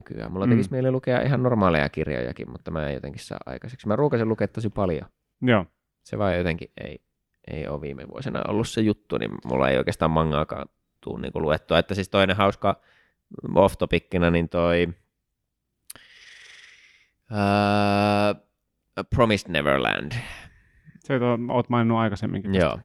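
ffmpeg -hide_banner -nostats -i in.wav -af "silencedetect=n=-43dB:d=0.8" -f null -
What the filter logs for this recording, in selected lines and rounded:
silence_start: 14.93
silence_end: 15.90 | silence_duration: 0.96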